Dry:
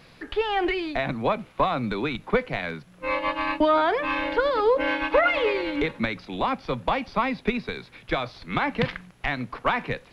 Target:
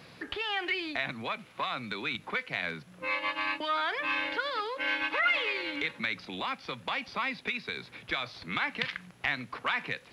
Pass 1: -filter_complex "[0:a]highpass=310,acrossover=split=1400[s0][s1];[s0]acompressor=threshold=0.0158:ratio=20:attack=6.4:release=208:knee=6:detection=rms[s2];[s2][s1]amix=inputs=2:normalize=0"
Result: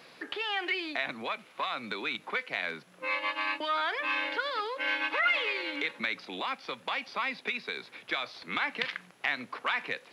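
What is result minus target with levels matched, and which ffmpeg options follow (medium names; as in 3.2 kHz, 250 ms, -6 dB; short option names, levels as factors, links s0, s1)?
125 Hz band -9.0 dB
-filter_complex "[0:a]highpass=84,acrossover=split=1400[s0][s1];[s0]acompressor=threshold=0.0158:ratio=20:attack=6.4:release=208:knee=6:detection=rms[s2];[s2][s1]amix=inputs=2:normalize=0"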